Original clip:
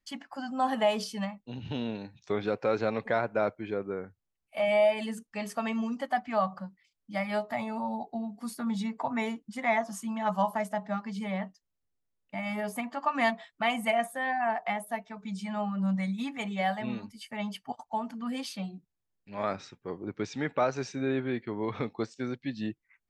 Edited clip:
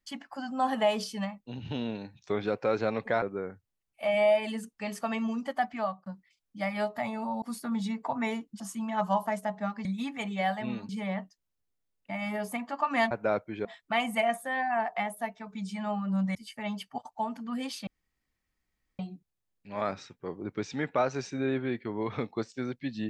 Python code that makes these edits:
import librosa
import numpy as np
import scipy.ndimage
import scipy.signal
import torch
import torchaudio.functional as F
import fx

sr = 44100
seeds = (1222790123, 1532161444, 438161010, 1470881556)

y = fx.edit(x, sr, fx.move(start_s=3.22, length_s=0.54, to_s=13.35),
    fx.fade_out_span(start_s=6.27, length_s=0.33),
    fx.cut(start_s=7.96, length_s=0.41),
    fx.cut(start_s=9.55, length_s=0.33),
    fx.move(start_s=16.05, length_s=1.04, to_s=11.13),
    fx.insert_room_tone(at_s=18.61, length_s=1.12), tone=tone)